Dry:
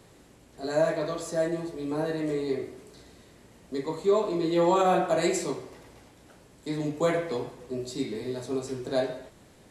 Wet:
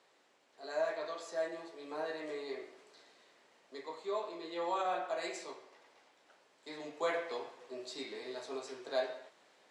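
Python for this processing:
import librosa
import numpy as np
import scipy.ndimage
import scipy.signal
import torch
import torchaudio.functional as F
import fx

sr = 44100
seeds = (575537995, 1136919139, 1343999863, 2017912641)

y = fx.rider(x, sr, range_db=10, speed_s=2.0)
y = fx.bandpass_edges(y, sr, low_hz=640.0, high_hz=5300.0)
y = y * 10.0 ** (-6.0 / 20.0)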